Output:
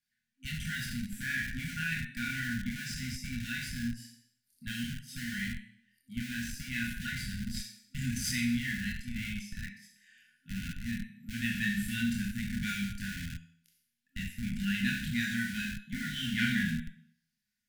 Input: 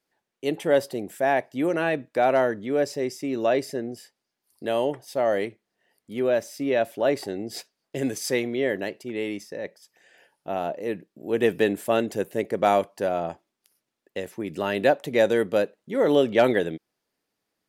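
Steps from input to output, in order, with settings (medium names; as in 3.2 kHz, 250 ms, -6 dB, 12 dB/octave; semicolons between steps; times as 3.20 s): chorus voices 4, 0.23 Hz, delay 25 ms, depth 1.2 ms; Schroeder reverb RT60 0.63 s, combs from 30 ms, DRR 2.5 dB; in parallel at -9 dB: Schmitt trigger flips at -28.5 dBFS; on the sum: FFT band-reject 260–1400 Hz; trim -2.5 dB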